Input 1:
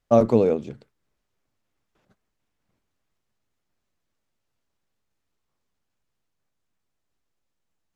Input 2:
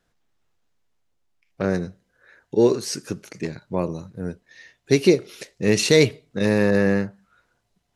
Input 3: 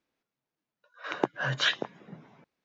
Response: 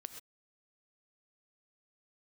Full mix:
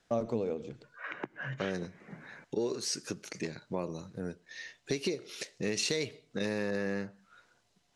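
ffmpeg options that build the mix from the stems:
-filter_complex "[0:a]volume=-5dB,asplit=2[link_01][link_02];[link_02]volume=-4dB[link_03];[1:a]highpass=frequency=170:poles=1,acompressor=threshold=-17dB:ratio=6,volume=0dB,asplit=2[link_04][link_05];[link_05]volume=-21dB[link_06];[2:a]highshelf=frequency=3000:width_type=q:width=3:gain=-12,acrossover=split=360|3000[link_07][link_08][link_09];[link_08]acompressor=threshold=-37dB:ratio=6[link_10];[link_07][link_10][link_09]amix=inputs=3:normalize=0,volume=-2.5dB,asplit=2[link_11][link_12];[link_12]volume=-12dB[link_13];[3:a]atrim=start_sample=2205[link_14];[link_03][link_06][link_13]amix=inputs=3:normalize=0[link_15];[link_15][link_14]afir=irnorm=-1:irlink=0[link_16];[link_01][link_04][link_11][link_16]amix=inputs=4:normalize=0,lowpass=7300,highshelf=frequency=3500:gain=7.5,acompressor=threshold=-39dB:ratio=2"

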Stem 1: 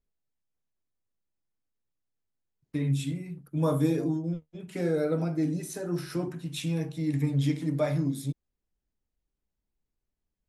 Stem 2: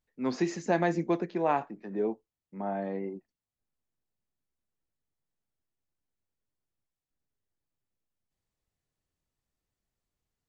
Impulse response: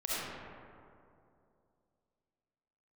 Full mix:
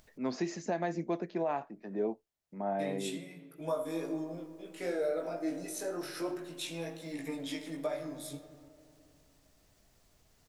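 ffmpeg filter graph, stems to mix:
-filter_complex "[0:a]highpass=440,alimiter=level_in=1.5dB:limit=-24dB:level=0:latency=1:release=428,volume=-1.5dB,flanger=delay=17.5:depth=4.5:speed=0.28,adelay=50,volume=1.5dB,asplit=2[link_01][link_02];[link_02]volume=-16dB[link_03];[1:a]equalizer=frequency=5400:width_type=o:width=0.77:gain=3,acompressor=mode=upward:threshold=-44dB:ratio=2.5,volume=-3dB[link_04];[2:a]atrim=start_sample=2205[link_05];[link_03][link_05]afir=irnorm=-1:irlink=0[link_06];[link_01][link_04][link_06]amix=inputs=3:normalize=0,equalizer=frequency=640:width=7.2:gain=8,alimiter=limit=-23dB:level=0:latency=1:release=289"

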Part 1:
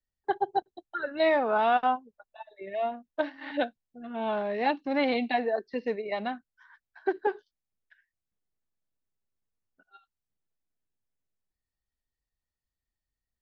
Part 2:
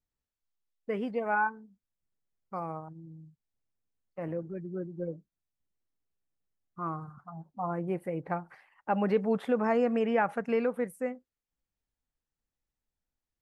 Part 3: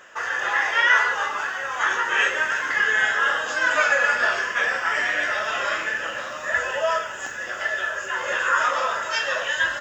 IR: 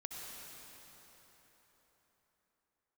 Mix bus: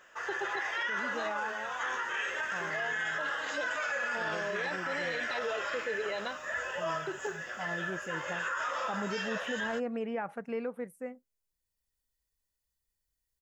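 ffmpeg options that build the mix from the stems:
-filter_complex "[0:a]highshelf=frequency=4300:gain=12,aecho=1:1:2:0.72,alimiter=limit=-22dB:level=0:latency=1,volume=-3dB[link_01];[1:a]volume=-7dB,asplit=2[link_02][link_03];[2:a]volume=-10.5dB[link_04];[link_03]apad=whole_len=591566[link_05];[link_01][link_05]sidechaincompress=threshold=-39dB:ratio=8:attack=16:release=1400[link_06];[link_06][link_02][link_04]amix=inputs=3:normalize=0,alimiter=level_in=1.5dB:limit=-24dB:level=0:latency=1:release=21,volume=-1.5dB"

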